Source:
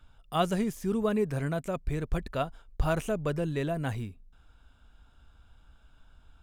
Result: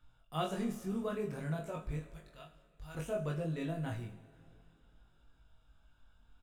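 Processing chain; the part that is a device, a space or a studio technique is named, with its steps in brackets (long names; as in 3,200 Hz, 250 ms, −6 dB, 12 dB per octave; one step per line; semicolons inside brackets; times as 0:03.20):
0:01.97–0:02.95: guitar amp tone stack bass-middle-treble 5-5-5
double-tracked vocal (double-tracking delay 25 ms −6.5 dB; chorus effect 0.54 Hz, delay 18.5 ms, depth 2.6 ms)
coupled-rooms reverb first 0.54 s, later 2.9 s, from −15 dB, DRR 6.5 dB
level −6.5 dB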